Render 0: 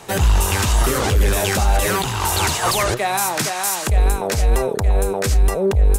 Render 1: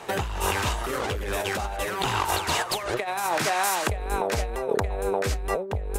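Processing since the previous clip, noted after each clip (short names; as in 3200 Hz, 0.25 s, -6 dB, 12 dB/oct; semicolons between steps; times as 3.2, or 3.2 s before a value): tone controls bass -9 dB, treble -9 dB; negative-ratio compressor -24 dBFS, ratio -0.5; gain -2 dB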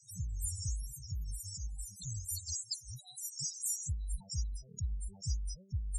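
EQ curve 150 Hz 0 dB, 420 Hz -29 dB, 710 Hz -24 dB, 2000 Hz -22 dB, 5500 Hz +12 dB; loudest bins only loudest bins 8; gain -6.5 dB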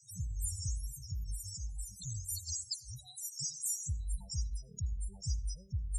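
reverb RT60 0.45 s, pre-delay 72 ms, DRR 17 dB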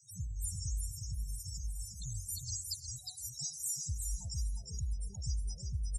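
feedback echo 0.359 s, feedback 19%, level -5 dB; gain -1.5 dB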